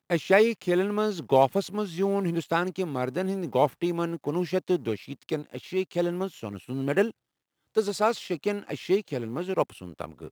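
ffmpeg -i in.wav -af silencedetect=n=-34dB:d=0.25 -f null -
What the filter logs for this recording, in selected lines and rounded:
silence_start: 7.11
silence_end: 7.77 | silence_duration: 0.66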